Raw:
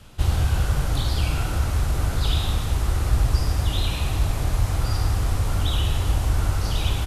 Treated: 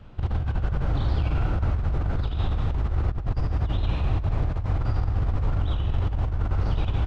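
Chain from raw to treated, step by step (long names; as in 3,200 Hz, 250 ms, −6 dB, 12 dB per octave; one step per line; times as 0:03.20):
0:00.82–0:01.25: low-shelf EQ 64 Hz −3 dB
compressor whose output falls as the input rises −22 dBFS, ratio −0.5
head-to-tape spacing loss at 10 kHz 37 dB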